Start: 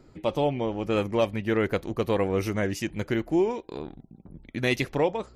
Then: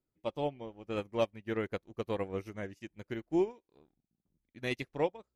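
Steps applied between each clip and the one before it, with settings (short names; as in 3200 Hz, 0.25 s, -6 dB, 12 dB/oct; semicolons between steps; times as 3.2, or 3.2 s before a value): upward expander 2.5:1, over -39 dBFS; gain -4.5 dB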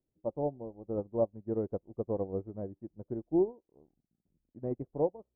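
inverse Chebyshev low-pass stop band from 3400 Hz, stop band 70 dB; gain +2 dB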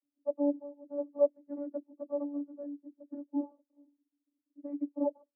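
low-pass opened by the level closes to 360 Hz, open at -26.5 dBFS; vocoder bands 32, saw 287 Hz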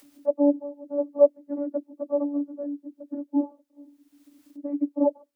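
upward compressor, threshold -46 dBFS; gain +9 dB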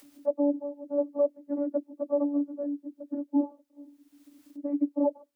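limiter -17 dBFS, peak gain reduction 10 dB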